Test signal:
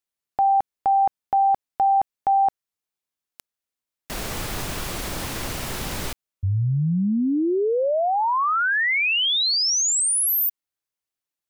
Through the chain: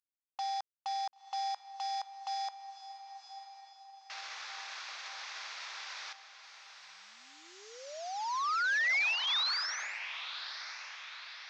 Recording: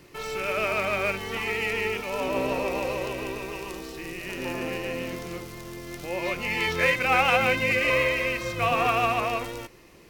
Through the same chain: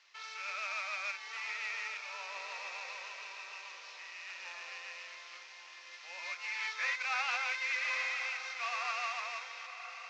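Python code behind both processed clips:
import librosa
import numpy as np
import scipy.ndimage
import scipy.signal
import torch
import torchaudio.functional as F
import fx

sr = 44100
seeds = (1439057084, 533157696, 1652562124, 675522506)

p1 = fx.cvsd(x, sr, bps=32000)
p2 = fx.dynamic_eq(p1, sr, hz=3000.0, q=6.8, threshold_db=-49.0, ratio=4.0, max_db=-8)
p3 = scipy.signal.sosfilt(scipy.signal.bessel(4, 1400.0, 'highpass', norm='mag', fs=sr, output='sos'), p2)
p4 = p3 + fx.echo_diffused(p3, sr, ms=1004, feedback_pct=51, wet_db=-11.0, dry=0)
y = F.gain(torch.from_numpy(p4), -6.5).numpy()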